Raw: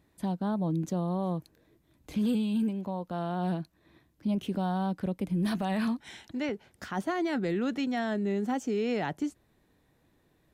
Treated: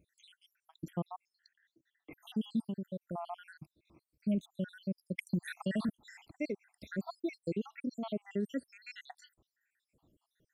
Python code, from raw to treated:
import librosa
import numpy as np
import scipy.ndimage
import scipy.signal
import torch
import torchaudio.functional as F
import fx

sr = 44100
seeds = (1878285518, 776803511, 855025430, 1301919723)

y = fx.spec_dropout(x, sr, seeds[0], share_pct=79)
y = fx.cabinet(y, sr, low_hz=190.0, low_slope=12, high_hz=6400.0, hz=(320.0, 920.0, 1800.0, 2900.0), db=(7, -6, 10, -4), at=(1.16, 2.13))
y = fx.band_squash(y, sr, depth_pct=100, at=(5.18, 5.89))
y = y * librosa.db_to_amplitude(-2.0)